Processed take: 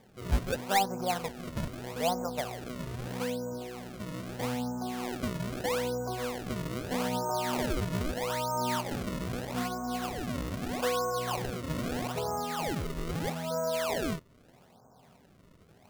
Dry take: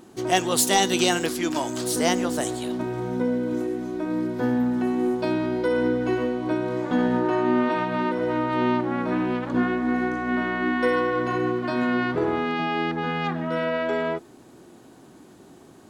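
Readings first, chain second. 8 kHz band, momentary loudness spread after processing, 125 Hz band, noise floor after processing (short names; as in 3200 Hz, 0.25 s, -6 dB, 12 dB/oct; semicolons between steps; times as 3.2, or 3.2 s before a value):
n/a, 7 LU, -2.5 dB, -59 dBFS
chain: steep low-pass 2000 Hz 72 dB/oct; fixed phaser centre 780 Hz, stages 4; decimation with a swept rate 31×, swing 160% 0.79 Hz; gain -3 dB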